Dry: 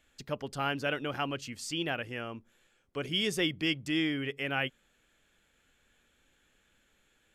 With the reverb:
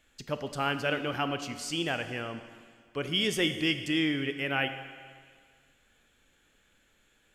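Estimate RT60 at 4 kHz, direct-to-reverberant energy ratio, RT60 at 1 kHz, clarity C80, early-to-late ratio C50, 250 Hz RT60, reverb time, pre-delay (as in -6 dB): 1.9 s, 9.0 dB, 1.9 s, 11.0 dB, 10.0 dB, 1.9 s, 1.9 s, 14 ms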